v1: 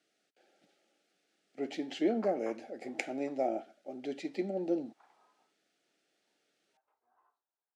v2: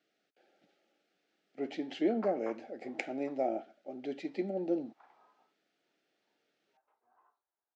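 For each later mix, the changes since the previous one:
background +3.5 dB; master: add distance through air 110 m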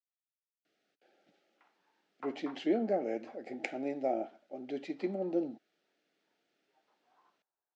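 speech: entry +0.65 s

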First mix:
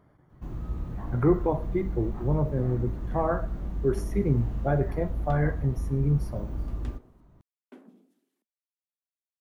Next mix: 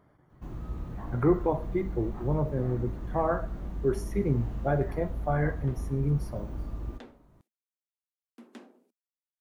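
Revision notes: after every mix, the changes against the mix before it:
second sound: entry +1.70 s; master: add bass shelf 240 Hz -4 dB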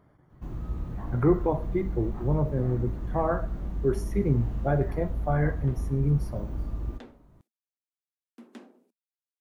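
master: add bass shelf 240 Hz +4 dB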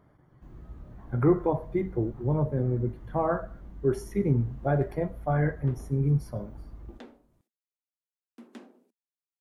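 first sound -12.0 dB

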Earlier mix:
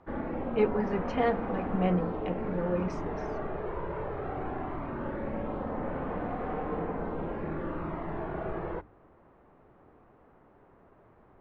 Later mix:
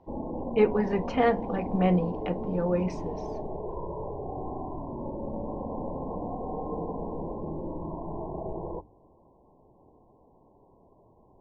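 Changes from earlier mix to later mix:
speech +4.0 dB; background: add brick-wall FIR low-pass 1.1 kHz

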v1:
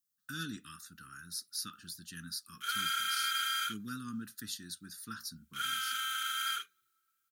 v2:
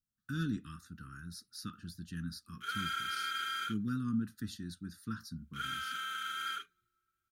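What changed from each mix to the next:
master: add tilt EQ -3.5 dB/octave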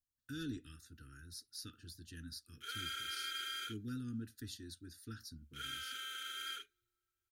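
master: add static phaser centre 450 Hz, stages 4

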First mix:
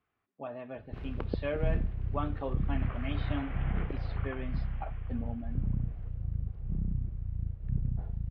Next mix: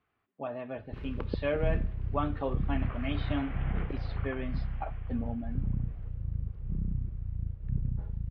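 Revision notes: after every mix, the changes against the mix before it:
speech +3.5 dB; first sound: add Butterworth band-stop 710 Hz, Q 4.7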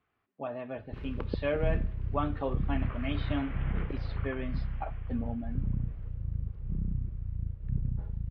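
second sound: add peaking EQ 740 Hz -6.5 dB 0.25 oct

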